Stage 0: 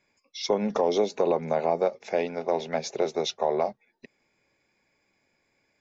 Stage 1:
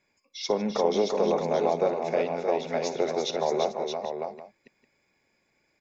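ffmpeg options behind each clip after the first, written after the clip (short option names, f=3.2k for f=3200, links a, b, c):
-af "aecho=1:1:57|153|342|622|793:0.178|0.119|0.501|0.473|0.133,volume=-1.5dB"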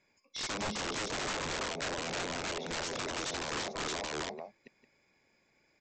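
-af "acompressor=threshold=-28dB:ratio=10,aresample=16000,aeval=exprs='(mod(33.5*val(0)+1,2)-1)/33.5':c=same,aresample=44100"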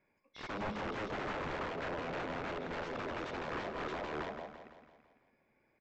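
-af "lowpass=1.9k,aecho=1:1:167|334|501|668|835|1002:0.355|0.188|0.0997|0.0528|0.028|0.0148,volume=-1.5dB"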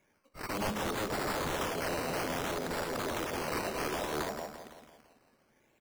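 -af "acrusher=samples=10:mix=1:aa=0.000001:lfo=1:lforange=6:lforate=0.62,volume=5dB"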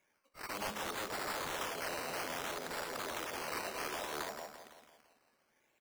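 -af "lowshelf=f=430:g=-12,volume=-2.5dB"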